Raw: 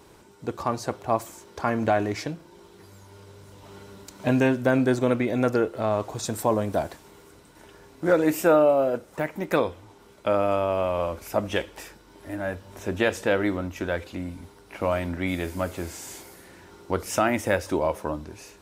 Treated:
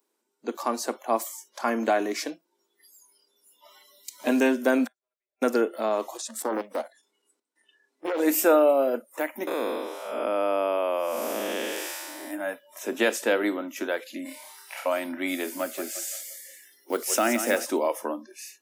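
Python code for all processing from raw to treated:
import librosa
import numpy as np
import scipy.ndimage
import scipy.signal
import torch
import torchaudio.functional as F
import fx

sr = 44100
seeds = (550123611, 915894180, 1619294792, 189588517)

y = fx.chain(x, sr, fx.highpass(hz=560.0, slope=24),
    fx.comb(ms=5.0, depth=0.91),
    fx.gate_flip(shuts_db=-26.0, range_db=-40), at=(4.84, 5.42))
y = fx.chain(y, sr, fx.lowpass(hz=11000.0, slope=12),
    fx.level_steps(step_db=13),
    fx.doppler_dist(depth_ms=0.76), at=(6.17, 8.2))
y = fx.chain(y, sr, fx.spec_blur(span_ms=328.0),
    fx.env_flatten(amount_pct=50), at=(9.47, 12.31))
y = fx.chain(y, sr, fx.highpass(hz=470.0, slope=12),
    fx.over_compress(threshold_db=-42.0, ratio=-0.5),
    fx.room_flutter(wall_m=5.1, rt60_s=0.53), at=(14.25, 14.86))
y = fx.chain(y, sr, fx.block_float(bits=7),
    fx.peak_eq(hz=1000.0, db=-5.0, octaves=0.49),
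    fx.echo_feedback(ms=174, feedback_pct=49, wet_db=-10), at=(15.6, 17.65))
y = scipy.signal.sosfilt(scipy.signal.cheby1(5, 1.0, 230.0, 'highpass', fs=sr, output='sos'), y)
y = fx.noise_reduce_blind(y, sr, reduce_db=25)
y = fx.high_shelf(y, sr, hz=6700.0, db=11.5)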